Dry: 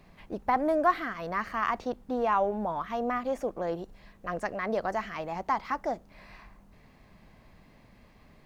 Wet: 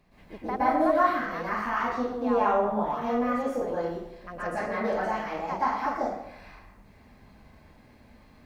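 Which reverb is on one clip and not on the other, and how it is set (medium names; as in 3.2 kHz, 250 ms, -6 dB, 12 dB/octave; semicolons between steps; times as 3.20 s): plate-style reverb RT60 0.79 s, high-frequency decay 0.75×, pre-delay 105 ms, DRR -10 dB; trim -8 dB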